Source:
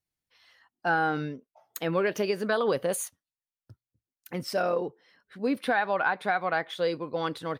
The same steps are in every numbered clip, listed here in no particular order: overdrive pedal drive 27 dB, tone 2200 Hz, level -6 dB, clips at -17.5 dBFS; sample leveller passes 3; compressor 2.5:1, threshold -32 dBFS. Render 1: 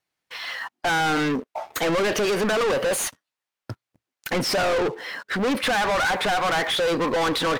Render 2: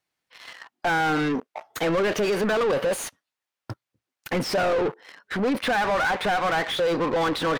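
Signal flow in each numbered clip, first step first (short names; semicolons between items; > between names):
compressor > overdrive pedal > sample leveller; compressor > sample leveller > overdrive pedal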